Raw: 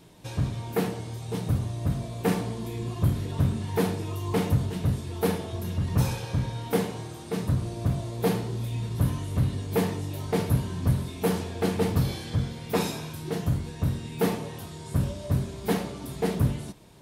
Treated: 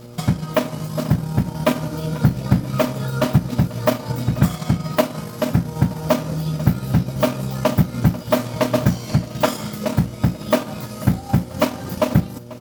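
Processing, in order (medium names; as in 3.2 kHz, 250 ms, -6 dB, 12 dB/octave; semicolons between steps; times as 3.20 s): peaking EQ 280 Hz -9.5 dB 0.45 oct; in parallel at -2 dB: compression, threshold -32 dBFS, peak gain reduction 13.5 dB; on the sum: transient shaper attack +6 dB, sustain -7 dB; speed mistake 33 rpm record played at 45 rpm; on a send: feedback delay 490 ms, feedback 39%, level -18.5 dB; on the sum: mains buzz 120 Hz, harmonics 5, -43 dBFS -4 dB/octave; trim +3.5 dB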